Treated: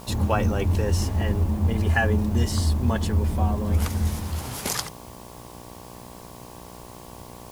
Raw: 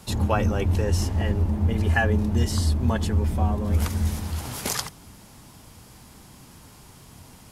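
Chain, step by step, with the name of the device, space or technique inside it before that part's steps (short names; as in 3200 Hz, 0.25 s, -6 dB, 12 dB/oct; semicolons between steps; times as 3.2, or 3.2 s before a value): video cassette with head-switching buzz (buzz 60 Hz, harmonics 19, -44 dBFS -1 dB/oct; white noise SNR 28 dB)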